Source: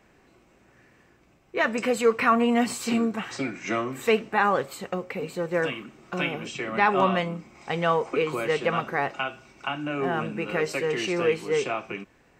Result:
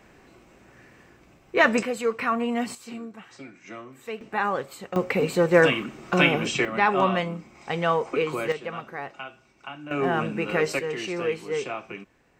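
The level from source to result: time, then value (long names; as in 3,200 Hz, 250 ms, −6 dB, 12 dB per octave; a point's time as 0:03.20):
+5.5 dB
from 0:01.83 −4.5 dB
from 0:02.75 −13 dB
from 0:04.21 −3.5 dB
from 0:04.96 +8.5 dB
from 0:06.65 0 dB
from 0:08.52 −8.5 dB
from 0:09.91 +2.5 dB
from 0:10.79 −3.5 dB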